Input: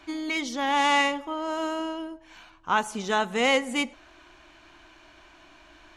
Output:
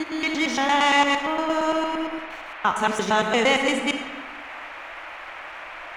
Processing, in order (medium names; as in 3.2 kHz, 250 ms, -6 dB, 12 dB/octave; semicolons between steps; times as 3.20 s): time reversed locally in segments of 115 ms; low-pass 9.8 kHz; in parallel at -1.5 dB: peak limiter -19 dBFS, peak gain reduction 8 dB; on the sum: crossover distortion -52 dBFS; band noise 570–2500 Hz -39 dBFS; on a send at -5.5 dB: reverberation RT60 1.4 s, pre-delay 10 ms